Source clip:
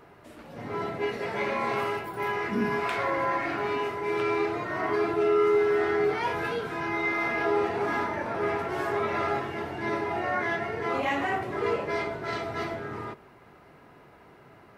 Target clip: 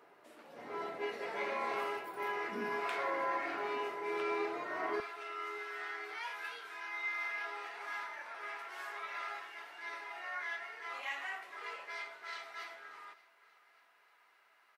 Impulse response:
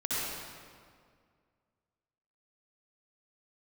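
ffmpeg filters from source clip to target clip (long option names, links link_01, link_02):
-af "asetnsamples=nb_out_samples=441:pad=0,asendcmd='5 highpass f 1400',highpass=370,aecho=1:1:584|1168|1752|2336:0.0794|0.0413|0.0215|0.0112,volume=-7.5dB"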